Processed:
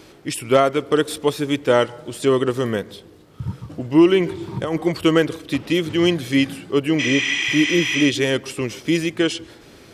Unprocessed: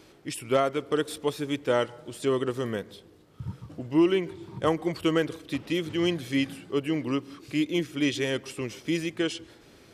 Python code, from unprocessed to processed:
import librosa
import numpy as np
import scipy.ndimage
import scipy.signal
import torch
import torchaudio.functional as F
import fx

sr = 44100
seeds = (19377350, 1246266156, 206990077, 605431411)

y = fx.over_compress(x, sr, threshold_db=-29.0, ratio=-1.0, at=(4.2, 4.78))
y = fx.spec_repair(y, sr, seeds[0], start_s=7.02, length_s=1.0, low_hz=680.0, high_hz=9200.0, source='after')
y = F.gain(torch.from_numpy(y), 8.5).numpy()